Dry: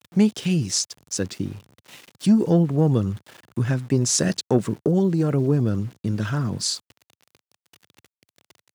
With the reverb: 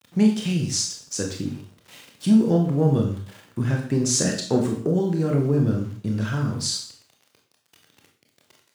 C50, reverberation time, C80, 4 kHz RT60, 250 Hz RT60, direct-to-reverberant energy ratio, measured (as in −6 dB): 6.5 dB, 0.50 s, 10.0 dB, 0.50 s, 0.45 s, 1.0 dB